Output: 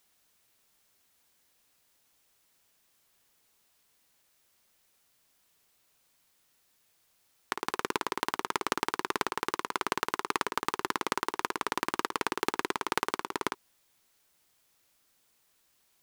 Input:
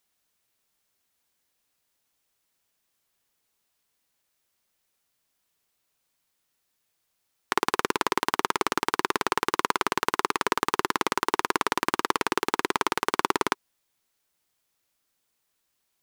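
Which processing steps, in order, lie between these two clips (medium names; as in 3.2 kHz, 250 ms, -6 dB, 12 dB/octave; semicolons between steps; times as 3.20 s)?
compressor with a negative ratio -29 dBFS, ratio -0.5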